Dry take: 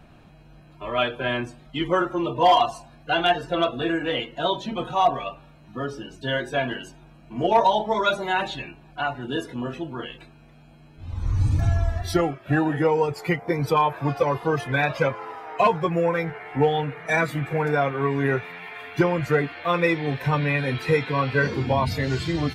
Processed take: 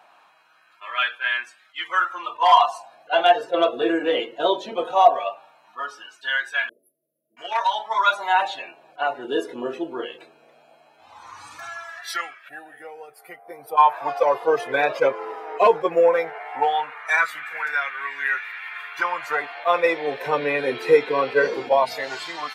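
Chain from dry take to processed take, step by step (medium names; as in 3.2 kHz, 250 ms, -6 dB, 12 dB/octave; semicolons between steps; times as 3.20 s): 6.69–7.37 s: brick-wall FIR band-stop 650–10000 Hz; 12.49–13.78 s: time-frequency box 800–8400 Hz -18 dB; LFO high-pass sine 0.18 Hz 400–1700 Hz; attacks held to a fixed rise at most 460 dB/s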